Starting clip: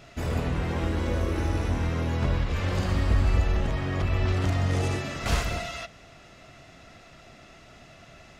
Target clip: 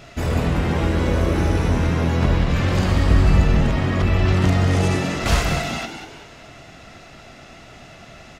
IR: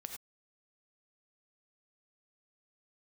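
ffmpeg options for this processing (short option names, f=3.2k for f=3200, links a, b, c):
-filter_complex "[0:a]asplit=5[a][b][c][d][e];[b]adelay=189,afreqshift=90,volume=-8.5dB[f];[c]adelay=378,afreqshift=180,volume=-16.7dB[g];[d]adelay=567,afreqshift=270,volume=-24.9dB[h];[e]adelay=756,afreqshift=360,volume=-33dB[i];[a][f][g][h][i]amix=inputs=5:normalize=0,volume=7dB"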